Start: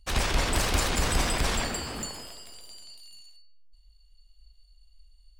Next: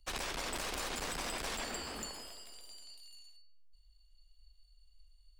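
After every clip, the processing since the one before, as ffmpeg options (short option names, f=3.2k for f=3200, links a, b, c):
-filter_complex "[0:a]aeval=exprs='(tanh(15.8*val(0)+0.45)-tanh(0.45))/15.8':c=same,equalizer=f=110:t=o:w=1.4:g=-10.5,acrossover=split=120|5000[a][b][c];[a]acompressor=threshold=-43dB:ratio=4[d];[b]acompressor=threshold=-34dB:ratio=4[e];[c]acompressor=threshold=-40dB:ratio=4[f];[d][e][f]amix=inputs=3:normalize=0,volume=-3.5dB"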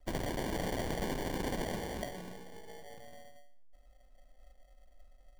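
-af "acrusher=samples=34:mix=1:aa=0.000001,volume=3.5dB"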